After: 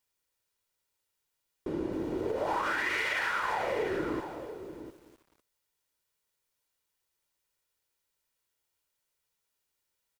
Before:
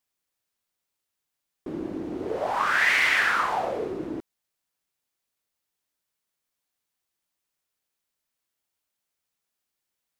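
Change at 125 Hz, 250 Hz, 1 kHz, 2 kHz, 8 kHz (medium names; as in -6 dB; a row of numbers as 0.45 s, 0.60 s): -0.5 dB, -1.5 dB, -6.0 dB, -9.0 dB, -8.5 dB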